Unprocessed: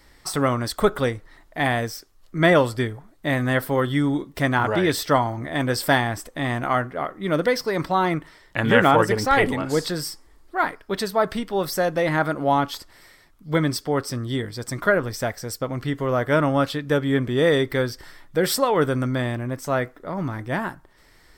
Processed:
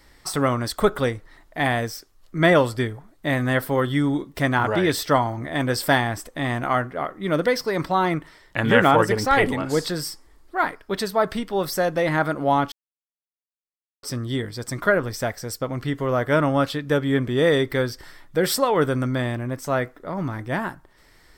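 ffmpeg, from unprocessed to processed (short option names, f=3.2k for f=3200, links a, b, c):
-filter_complex "[0:a]asplit=3[a][b][c];[a]atrim=end=12.72,asetpts=PTS-STARTPTS,afade=t=out:st=12.716:d=0.004:c=hsin[d];[b]atrim=start=12.72:end=14.03,asetpts=PTS-STARTPTS,volume=0[e];[c]atrim=start=14.03,asetpts=PTS-STARTPTS,afade=t=in:d=0.004:c=hsin[f];[d][e][f]concat=n=3:v=0:a=1"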